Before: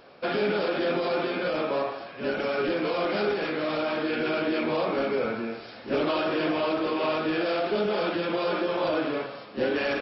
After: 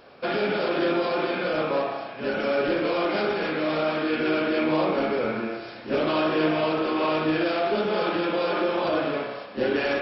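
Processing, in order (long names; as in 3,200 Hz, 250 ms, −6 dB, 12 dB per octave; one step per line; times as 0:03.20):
spring reverb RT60 1.1 s, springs 32 ms, chirp 65 ms, DRR 4 dB
level +1 dB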